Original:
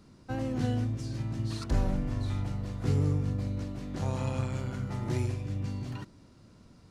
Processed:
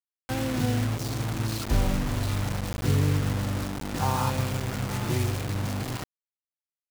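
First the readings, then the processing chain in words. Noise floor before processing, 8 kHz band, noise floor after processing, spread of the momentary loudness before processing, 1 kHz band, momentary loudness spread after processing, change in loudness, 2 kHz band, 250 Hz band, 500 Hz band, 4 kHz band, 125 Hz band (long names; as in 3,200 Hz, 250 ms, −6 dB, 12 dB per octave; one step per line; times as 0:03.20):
−57 dBFS, +13.0 dB, below −85 dBFS, 7 LU, +10.0 dB, 6 LU, +4.5 dB, +11.0 dB, +3.5 dB, +4.5 dB, +11.5 dB, +3.5 dB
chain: gain on a spectral selection 0:04.00–0:04.30, 730–1,700 Hz +11 dB
bit-depth reduction 6 bits, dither none
level +3.5 dB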